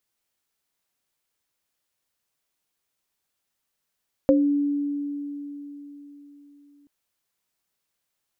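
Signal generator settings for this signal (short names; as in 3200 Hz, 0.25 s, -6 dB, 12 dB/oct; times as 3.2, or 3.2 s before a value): sine partials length 2.58 s, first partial 287 Hz, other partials 533 Hz, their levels 4.5 dB, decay 4.04 s, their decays 0.23 s, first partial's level -15.5 dB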